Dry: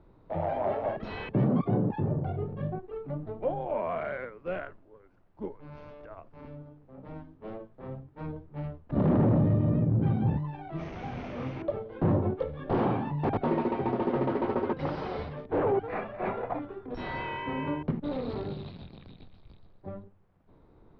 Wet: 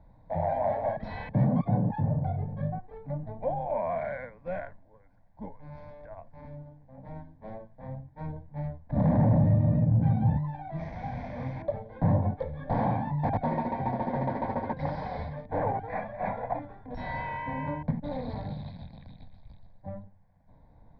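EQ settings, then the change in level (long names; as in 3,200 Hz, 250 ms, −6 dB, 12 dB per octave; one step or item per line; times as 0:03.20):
high-shelf EQ 2,500 Hz −8 dB
phaser with its sweep stopped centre 1,900 Hz, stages 8
+4.0 dB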